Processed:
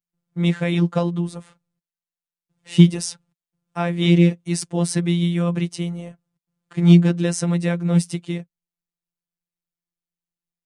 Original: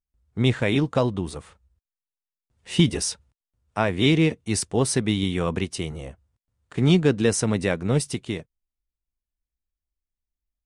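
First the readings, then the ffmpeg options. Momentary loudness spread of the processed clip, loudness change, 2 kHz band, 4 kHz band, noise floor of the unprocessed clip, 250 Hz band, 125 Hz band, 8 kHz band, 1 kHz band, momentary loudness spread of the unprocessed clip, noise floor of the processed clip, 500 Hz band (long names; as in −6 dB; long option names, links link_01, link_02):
15 LU, +3.5 dB, −2.0 dB, −2.0 dB, below −85 dBFS, +5.0 dB, +5.5 dB, −2.0 dB, −1.5 dB, 15 LU, below −85 dBFS, −1.5 dB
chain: -af "afftfilt=real='hypot(re,im)*cos(PI*b)':imag='0':win_size=1024:overlap=0.75,lowshelf=frequency=110:width_type=q:width=3:gain=-12.5,volume=1.5dB"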